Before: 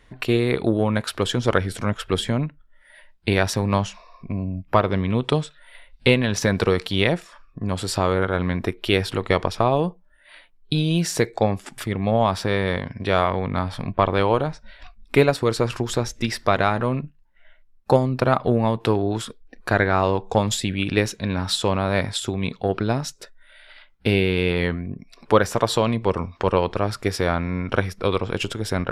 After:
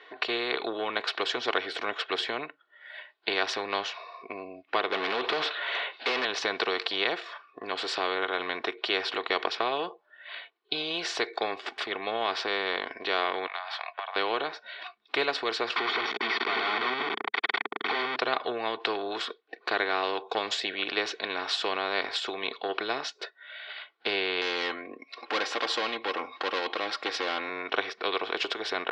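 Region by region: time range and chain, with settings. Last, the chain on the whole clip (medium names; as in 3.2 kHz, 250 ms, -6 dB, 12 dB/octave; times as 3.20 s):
4.92–6.25 s: Chebyshev low-pass 4.9 kHz + compression 3:1, threshold -24 dBFS + overdrive pedal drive 33 dB, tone 1.4 kHz, clips at -10 dBFS
13.47–14.16 s: elliptic high-pass 690 Hz, stop band 50 dB + compression 12:1, threshold -30 dBFS
15.76–18.16 s: one-bit comparator + cabinet simulation 140–3300 Hz, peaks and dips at 140 Hz -7 dB, 220 Hz +7 dB, 420 Hz +6 dB, 1.8 kHz +9 dB, 2.8 kHz -4 dB + comb 0.9 ms, depth 100%
24.41–27.49 s: overload inside the chain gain 17.5 dB + comb 3.7 ms
whole clip: Chebyshev band-pass 420–4000 Hz, order 3; comb 2.7 ms, depth 56%; spectrum-flattening compressor 2:1; trim -5 dB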